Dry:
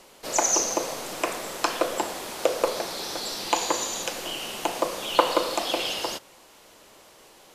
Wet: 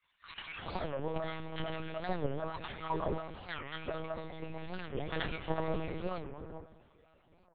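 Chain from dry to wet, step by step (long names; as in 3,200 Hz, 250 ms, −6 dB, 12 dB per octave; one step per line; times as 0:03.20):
samples sorted by size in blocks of 16 samples
low-shelf EQ 390 Hz +6.5 dB
resonators tuned to a chord A#2 sus4, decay 0.55 s
formants moved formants +4 semitones
hollow resonant body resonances 350/720/1,700 Hz, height 8 dB, ringing for 20 ms
granular cloud, pitch spread up and down by 12 semitones
transient designer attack +2 dB, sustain +6 dB
multiband delay without the direct sound highs, lows 370 ms, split 1,300 Hz
one-pitch LPC vocoder at 8 kHz 160 Hz
wow of a warped record 45 rpm, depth 250 cents
level +1.5 dB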